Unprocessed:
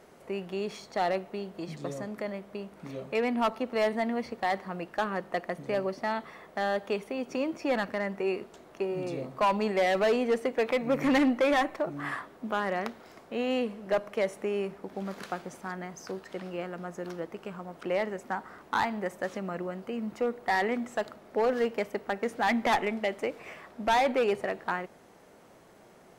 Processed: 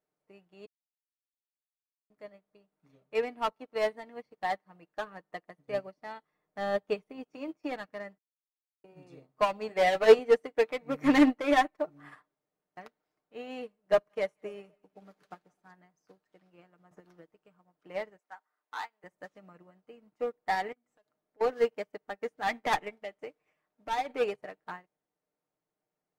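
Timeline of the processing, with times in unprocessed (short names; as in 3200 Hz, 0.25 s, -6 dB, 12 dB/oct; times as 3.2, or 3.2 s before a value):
0.66–2.1 mute
6.32–7.24 low shelf 280 Hz +8 dB
8.18–8.84 mute
9.67–10.19 doubler 18 ms -5 dB
12.35–12.77 room tone
13.81–15.71 split-band echo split 710 Hz, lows 0.257 s, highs 0.178 s, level -14 dB
16.91–17.32 three-band squash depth 100%
18.18–19.04 Bessel high-pass 800 Hz
20.72–21.41 compressor 4:1, threshold -40 dBFS
22.98–24.1 compressor 3:1, threshold -26 dBFS
whole clip: comb 6.6 ms, depth 51%; upward expander 2.5:1, over -44 dBFS; gain +6 dB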